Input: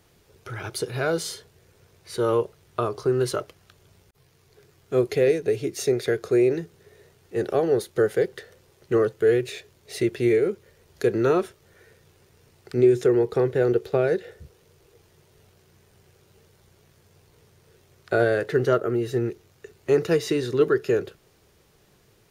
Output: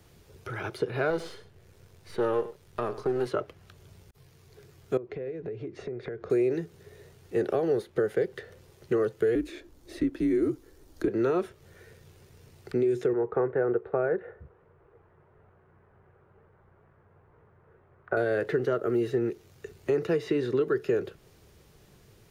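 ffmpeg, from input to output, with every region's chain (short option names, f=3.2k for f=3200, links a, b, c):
-filter_complex "[0:a]asettb=1/sr,asplit=3[a][b][c];[a]atrim=end=1.104[d];[b]atrim=start=1.1:end=3.27,asetpts=PTS-STARTPTS,afade=t=in:d=0.004:c=qsin,afade=t=out:st=2.166:d=0.004:c=qsin,aeval=exprs='if(lt(val(0),0),0.447*val(0),val(0))':c=same,aecho=1:1:98:0.15,atrim=end_sample=95697[e];[c]atrim=start=3.266[f];[d][e]acrossfade=d=0.004:c1=hsin:c2=qsin[g];[g][f]acrossfade=d=0.004:c1=qsin:c2=hsin,asettb=1/sr,asplit=3[h][i][j];[h]atrim=end=4.974[k];[i]atrim=start=4.97:end=6.3,asetpts=PTS-STARTPTS,afade=t=in:d=0.004:c=qsin,afade=t=out:st=1.326:d=0.004:c=qsin,lowpass=1.8k,acompressor=threshold=-35dB:ratio=6:attack=3.2:release=140:knee=1:detection=peak[l];[j]atrim=start=6.296[m];[k][l]acrossfade=d=0.004:c1=hsin:c2=qsin[n];[n][m]acrossfade=d=0.004:c1=qsin:c2=hsin,asettb=1/sr,asplit=3[o][p][q];[o]atrim=end=9.354[r];[p]atrim=start=9.35:end=11.08,asetpts=PTS-STARTPTS,afade=t=in:d=0.004:c=qsin,afade=t=out:st=1.726:d=0.004:c=qsin,afreqshift=-74,equalizer=f=2.4k:t=o:w=1.4:g=-7.5[s];[q]atrim=start=11.076[t];[r][s]acrossfade=d=0.004:c1=hsin:c2=qsin[u];[u][t]acrossfade=d=0.004:c1=qsin:c2=hsin,asettb=1/sr,asplit=3[v][w][x];[v]atrim=end=13.134[y];[w]atrim=start=13.13:end=18.17,asetpts=PTS-STARTPTS,afade=t=in:d=0.004:c=qsin,afade=t=out:st=5.036:d=0.004:c=qsin,lowpass=f=1.4k:w=0.5412,lowpass=f=1.4k:w=1.3066,tiltshelf=f=670:g=-8[z];[x]atrim=start=18.166[aa];[y][z]acrossfade=d=0.004:c1=hsin:c2=qsin[ab];[ab][aa]acrossfade=d=0.004:c1=qsin:c2=hsin,lowshelf=f=230:g=6,alimiter=limit=-13.5dB:level=0:latency=1:release=305,acrossover=split=190|3100[ac][ad][ae];[ac]acompressor=threshold=-44dB:ratio=4[af];[ad]acompressor=threshold=-22dB:ratio=4[ag];[ae]acompressor=threshold=-58dB:ratio=4[ah];[af][ag][ah]amix=inputs=3:normalize=0"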